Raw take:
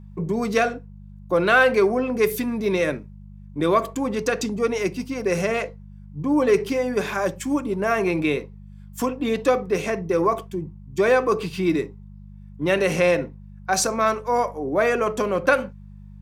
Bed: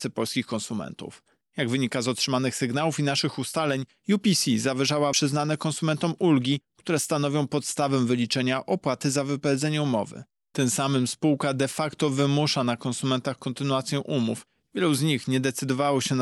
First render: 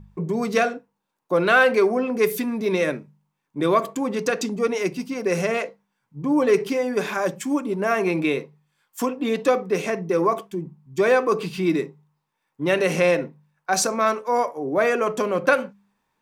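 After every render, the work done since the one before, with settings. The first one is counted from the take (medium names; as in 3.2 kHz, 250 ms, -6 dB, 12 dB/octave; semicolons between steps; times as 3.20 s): de-hum 50 Hz, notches 4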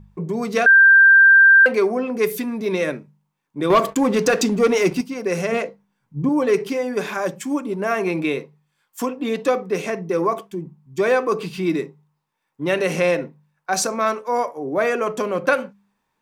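0.66–1.66 s: bleep 1.58 kHz -7 dBFS; 3.70–5.01 s: waveshaping leveller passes 2; 5.52–6.29 s: bass shelf 330 Hz +10.5 dB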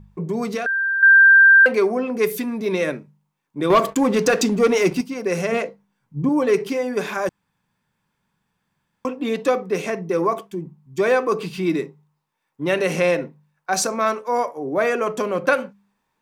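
0.48–1.03 s: compression, threshold -21 dBFS; 7.29–9.05 s: room tone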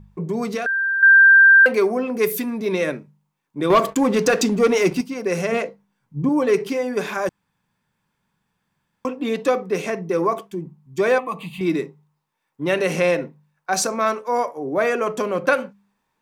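0.62–2.51 s: treble shelf 12 kHz +9.5 dB; 11.18–11.61 s: static phaser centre 1.5 kHz, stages 6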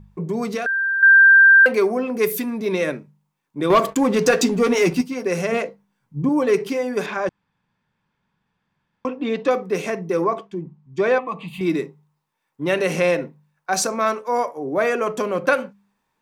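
4.20–5.27 s: doubling 12 ms -7 dB; 7.06–9.51 s: low-pass 4.4 kHz; 10.24–11.48 s: distance through air 110 m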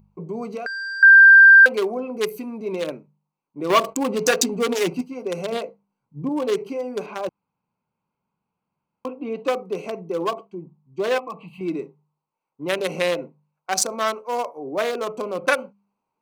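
local Wiener filter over 25 samples; tilt EQ +3 dB/octave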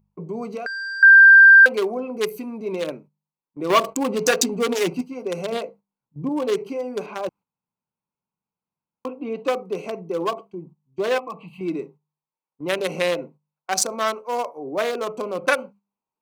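gate -45 dBFS, range -11 dB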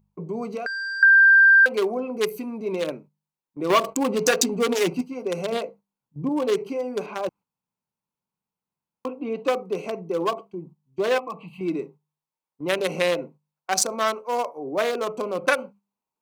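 compression 2.5:1, threshold -14 dBFS, peak gain reduction 4.5 dB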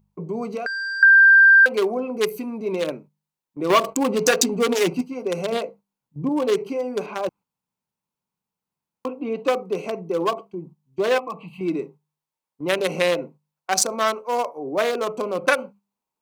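trim +2 dB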